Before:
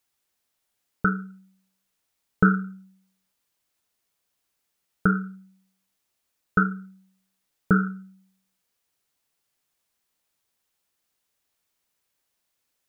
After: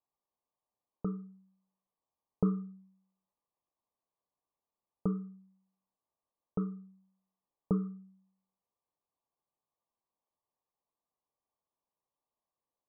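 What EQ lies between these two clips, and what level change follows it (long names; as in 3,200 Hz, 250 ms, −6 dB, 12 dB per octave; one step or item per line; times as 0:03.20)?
Chebyshev low-pass filter 1,200 Hz, order 10
high-frequency loss of the air 420 metres
low-shelf EQ 460 Hz −11 dB
0.0 dB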